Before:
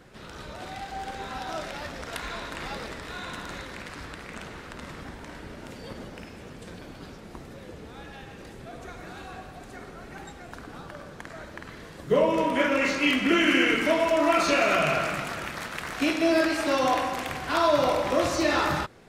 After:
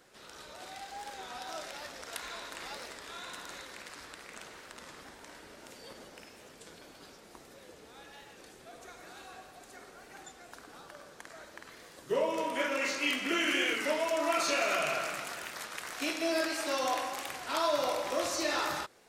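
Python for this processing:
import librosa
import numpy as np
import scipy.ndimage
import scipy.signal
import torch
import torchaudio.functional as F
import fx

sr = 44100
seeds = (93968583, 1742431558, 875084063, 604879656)

y = fx.bass_treble(x, sr, bass_db=-13, treble_db=8)
y = fx.record_warp(y, sr, rpm=33.33, depth_cents=100.0)
y = y * 10.0 ** (-7.5 / 20.0)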